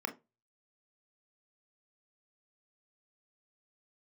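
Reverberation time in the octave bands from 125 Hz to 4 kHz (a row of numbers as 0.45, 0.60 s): 0.40, 0.25, 0.25, 0.20, 0.20, 0.15 s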